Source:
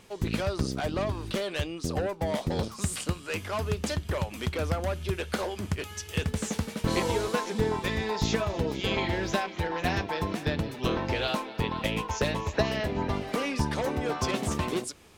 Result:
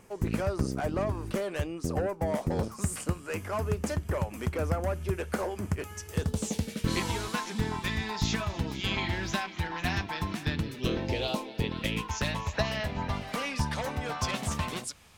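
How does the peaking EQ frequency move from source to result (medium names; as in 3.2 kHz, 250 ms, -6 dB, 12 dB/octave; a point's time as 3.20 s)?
peaking EQ -13 dB 0.95 oct
6.03 s 3.7 kHz
7.08 s 490 Hz
10.42 s 490 Hz
11.32 s 1.7 kHz
12.40 s 360 Hz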